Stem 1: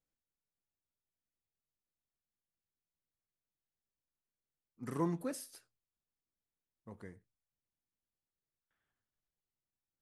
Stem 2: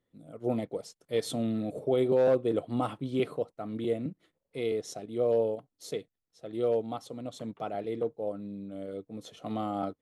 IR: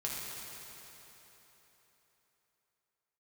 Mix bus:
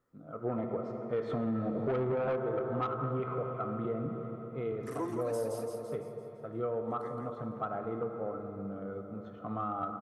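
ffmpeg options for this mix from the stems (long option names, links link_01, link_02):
-filter_complex "[0:a]highpass=frequency=280:width=0.5412,highpass=frequency=280:width=1.3066,volume=1.5dB,asplit=2[link_01][link_02];[link_02]volume=-5.5dB[link_03];[1:a]asubboost=boost=2:cutoff=190,dynaudnorm=framelen=550:gausssize=5:maxgain=6dB,lowpass=frequency=1300:width_type=q:width=5.7,volume=-3.5dB,afade=type=out:start_time=1.92:duration=0.58:silence=0.334965,asplit=2[link_04][link_05];[link_05]volume=-3.5dB[link_06];[2:a]atrim=start_sample=2205[link_07];[link_06][link_07]afir=irnorm=-1:irlink=0[link_08];[link_03]aecho=0:1:169|338|507|676|845|1014|1183:1|0.47|0.221|0.104|0.0488|0.0229|0.0108[link_09];[link_01][link_04][link_08][link_09]amix=inputs=4:normalize=0,asoftclip=type=tanh:threshold=-18.5dB,acompressor=threshold=-30dB:ratio=5"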